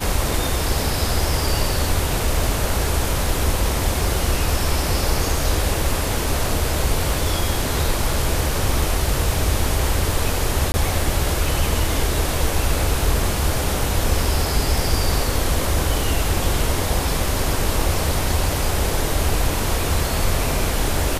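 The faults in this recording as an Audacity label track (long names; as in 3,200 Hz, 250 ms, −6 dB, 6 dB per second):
10.720000	10.740000	drop-out 20 ms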